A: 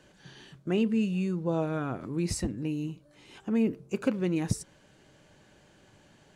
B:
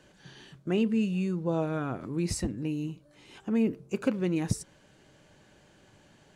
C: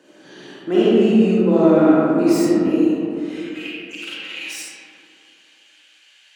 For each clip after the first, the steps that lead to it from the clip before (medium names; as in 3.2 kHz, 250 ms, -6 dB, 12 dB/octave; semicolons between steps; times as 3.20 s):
no audible change
self-modulated delay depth 0.1 ms; high-pass sweep 300 Hz -> 2.7 kHz, 2.56–3.50 s; algorithmic reverb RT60 2.9 s, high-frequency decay 0.35×, pre-delay 10 ms, DRR -9.5 dB; trim +2 dB